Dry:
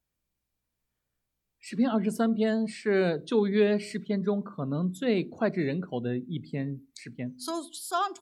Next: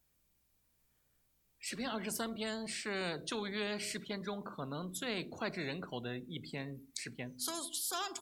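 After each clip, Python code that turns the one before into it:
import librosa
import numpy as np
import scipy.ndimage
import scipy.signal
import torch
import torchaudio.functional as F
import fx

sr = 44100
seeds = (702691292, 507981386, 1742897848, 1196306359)

y = fx.high_shelf(x, sr, hz=7300.0, db=6.0)
y = fx.spectral_comp(y, sr, ratio=2.0)
y = y * librosa.db_to_amplitude(-5.5)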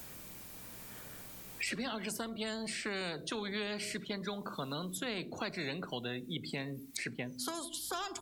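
y = fx.band_squash(x, sr, depth_pct=100)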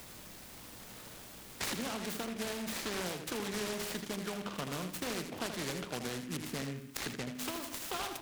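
y = fx.echo_feedback(x, sr, ms=80, feedback_pct=28, wet_db=-7.5)
y = fx.noise_mod_delay(y, sr, seeds[0], noise_hz=1900.0, depth_ms=0.11)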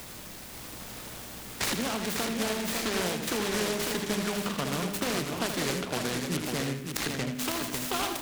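y = x + 10.0 ** (-5.5 / 20.0) * np.pad(x, (int(550 * sr / 1000.0), 0))[:len(x)]
y = y * librosa.db_to_amplitude(7.0)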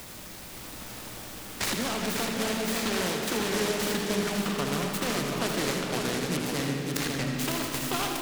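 y = fx.rev_freeverb(x, sr, rt60_s=4.6, hf_ratio=0.7, predelay_ms=40, drr_db=3.5)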